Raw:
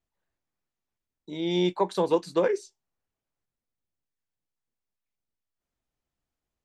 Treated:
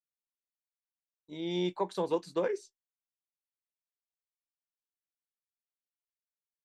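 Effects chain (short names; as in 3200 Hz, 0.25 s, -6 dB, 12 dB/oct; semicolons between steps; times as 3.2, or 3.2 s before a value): expander -37 dBFS; gain -7 dB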